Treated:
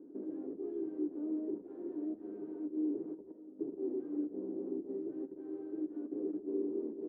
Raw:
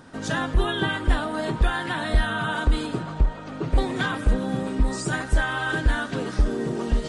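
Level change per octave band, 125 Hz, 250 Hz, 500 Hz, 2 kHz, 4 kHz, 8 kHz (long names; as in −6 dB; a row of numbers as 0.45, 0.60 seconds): below −35 dB, −8.0 dB, −9.5 dB, below −40 dB, below −40 dB, below −40 dB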